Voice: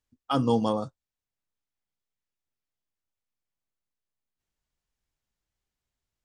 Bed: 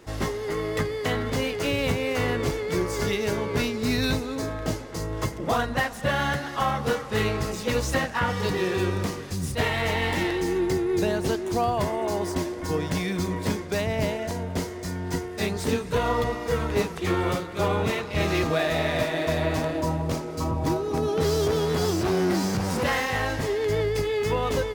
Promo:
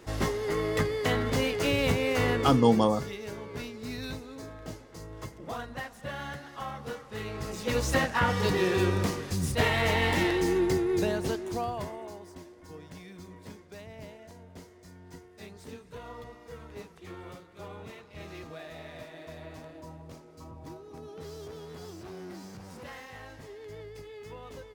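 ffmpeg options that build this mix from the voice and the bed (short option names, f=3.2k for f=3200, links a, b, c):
-filter_complex "[0:a]adelay=2150,volume=2.5dB[a];[1:a]volume=11.5dB,afade=t=out:st=2.33:d=0.49:silence=0.251189,afade=t=in:st=7.26:d=0.76:silence=0.237137,afade=t=out:st=10.47:d=1.75:silence=0.112202[b];[a][b]amix=inputs=2:normalize=0"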